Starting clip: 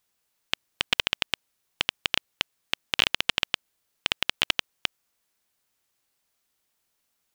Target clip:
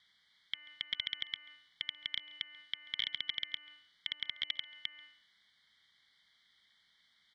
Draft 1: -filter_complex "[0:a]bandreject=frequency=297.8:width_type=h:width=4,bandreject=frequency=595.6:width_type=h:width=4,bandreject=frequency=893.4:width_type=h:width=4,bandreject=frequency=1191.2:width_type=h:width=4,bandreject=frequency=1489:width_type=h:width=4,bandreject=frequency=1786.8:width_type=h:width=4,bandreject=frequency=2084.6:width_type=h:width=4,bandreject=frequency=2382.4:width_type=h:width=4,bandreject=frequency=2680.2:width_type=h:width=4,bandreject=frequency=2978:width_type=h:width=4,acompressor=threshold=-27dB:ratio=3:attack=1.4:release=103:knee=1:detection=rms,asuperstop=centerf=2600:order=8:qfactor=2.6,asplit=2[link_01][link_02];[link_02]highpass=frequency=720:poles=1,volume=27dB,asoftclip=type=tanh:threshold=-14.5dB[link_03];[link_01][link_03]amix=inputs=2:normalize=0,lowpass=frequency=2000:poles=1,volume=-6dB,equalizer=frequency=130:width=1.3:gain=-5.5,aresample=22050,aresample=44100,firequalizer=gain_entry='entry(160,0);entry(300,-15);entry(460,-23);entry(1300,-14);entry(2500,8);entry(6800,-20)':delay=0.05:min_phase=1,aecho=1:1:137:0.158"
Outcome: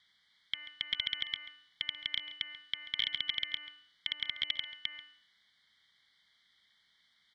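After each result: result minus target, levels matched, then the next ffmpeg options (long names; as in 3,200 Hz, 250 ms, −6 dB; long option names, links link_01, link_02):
downward compressor: peak gain reduction −7.5 dB; echo-to-direct +6.5 dB
-filter_complex "[0:a]bandreject=frequency=297.8:width_type=h:width=4,bandreject=frequency=595.6:width_type=h:width=4,bandreject=frequency=893.4:width_type=h:width=4,bandreject=frequency=1191.2:width_type=h:width=4,bandreject=frequency=1489:width_type=h:width=4,bandreject=frequency=1786.8:width_type=h:width=4,bandreject=frequency=2084.6:width_type=h:width=4,bandreject=frequency=2382.4:width_type=h:width=4,bandreject=frequency=2680.2:width_type=h:width=4,bandreject=frequency=2978:width_type=h:width=4,acompressor=threshold=-38.5dB:ratio=3:attack=1.4:release=103:knee=1:detection=rms,asuperstop=centerf=2600:order=8:qfactor=2.6,asplit=2[link_01][link_02];[link_02]highpass=frequency=720:poles=1,volume=27dB,asoftclip=type=tanh:threshold=-14.5dB[link_03];[link_01][link_03]amix=inputs=2:normalize=0,lowpass=frequency=2000:poles=1,volume=-6dB,equalizer=frequency=130:width=1.3:gain=-5.5,aresample=22050,aresample=44100,firequalizer=gain_entry='entry(160,0);entry(300,-15);entry(460,-23);entry(1300,-14);entry(2500,8);entry(6800,-20)':delay=0.05:min_phase=1,aecho=1:1:137:0.158"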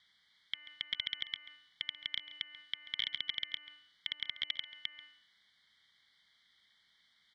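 echo-to-direct +6.5 dB
-filter_complex "[0:a]bandreject=frequency=297.8:width_type=h:width=4,bandreject=frequency=595.6:width_type=h:width=4,bandreject=frequency=893.4:width_type=h:width=4,bandreject=frequency=1191.2:width_type=h:width=4,bandreject=frequency=1489:width_type=h:width=4,bandreject=frequency=1786.8:width_type=h:width=4,bandreject=frequency=2084.6:width_type=h:width=4,bandreject=frequency=2382.4:width_type=h:width=4,bandreject=frequency=2680.2:width_type=h:width=4,bandreject=frequency=2978:width_type=h:width=4,acompressor=threshold=-38.5dB:ratio=3:attack=1.4:release=103:knee=1:detection=rms,asuperstop=centerf=2600:order=8:qfactor=2.6,asplit=2[link_01][link_02];[link_02]highpass=frequency=720:poles=1,volume=27dB,asoftclip=type=tanh:threshold=-14.5dB[link_03];[link_01][link_03]amix=inputs=2:normalize=0,lowpass=frequency=2000:poles=1,volume=-6dB,equalizer=frequency=130:width=1.3:gain=-5.5,aresample=22050,aresample=44100,firequalizer=gain_entry='entry(160,0);entry(300,-15);entry(460,-23);entry(1300,-14);entry(2500,8);entry(6800,-20)':delay=0.05:min_phase=1,aecho=1:1:137:0.075"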